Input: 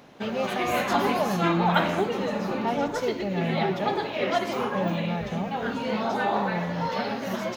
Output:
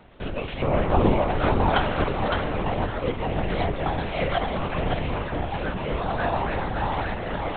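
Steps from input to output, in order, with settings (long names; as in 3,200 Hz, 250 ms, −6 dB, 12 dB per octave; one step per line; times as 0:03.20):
0:00.40–0:00.62: gain on a spectral selection 290–1,900 Hz −8 dB
0:00.62–0:01.22: tilt shelving filter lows +9.5 dB
feedback echo with a high-pass in the loop 562 ms, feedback 30%, level −3 dB
linear-prediction vocoder at 8 kHz whisper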